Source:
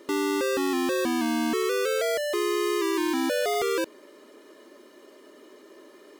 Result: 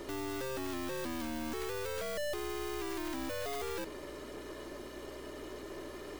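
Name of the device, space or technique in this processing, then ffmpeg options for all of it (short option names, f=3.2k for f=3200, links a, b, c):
valve amplifier with mains hum: -af "aeval=exprs='(tanh(158*val(0)+0.55)-tanh(0.55))/158':c=same,aeval=exprs='val(0)+0.000631*(sin(2*PI*60*n/s)+sin(2*PI*2*60*n/s)/2+sin(2*PI*3*60*n/s)/3+sin(2*PI*4*60*n/s)/4+sin(2*PI*5*60*n/s)/5)':c=same,volume=8dB"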